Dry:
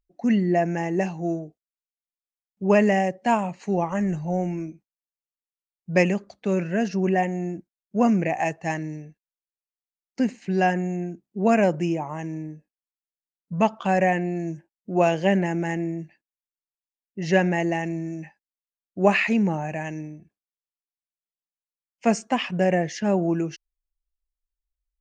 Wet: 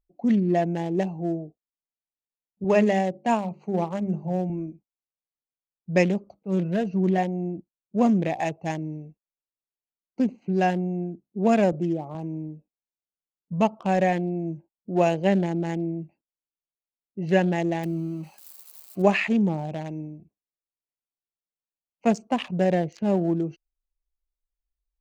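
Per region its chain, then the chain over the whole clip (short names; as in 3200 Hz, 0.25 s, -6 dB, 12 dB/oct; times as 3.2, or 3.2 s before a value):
2.64–4.5 HPF 95 Hz + notches 50/100/150/200/250/300/350/400 Hz
6.32–7.18 LPF 6900 Hz + comb 6.2 ms, depth 41% + auto swell 0.116 s
11.72–12.15 HPF 42 Hz + notch comb 960 Hz
17.83–19.02 switching spikes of -24 dBFS + comb 5.4 ms, depth 31%
whole clip: Wiener smoothing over 25 samples; dynamic EQ 1400 Hz, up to -4 dB, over -39 dBFS, Q 1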